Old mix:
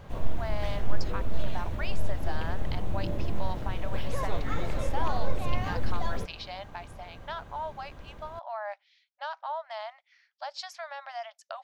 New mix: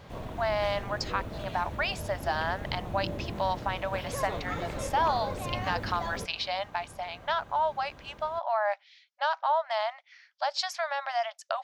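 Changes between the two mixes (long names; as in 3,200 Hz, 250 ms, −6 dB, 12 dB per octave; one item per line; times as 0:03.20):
speech +8.5 dB
background: add high-pass filter 110 Hz 6 dB per octave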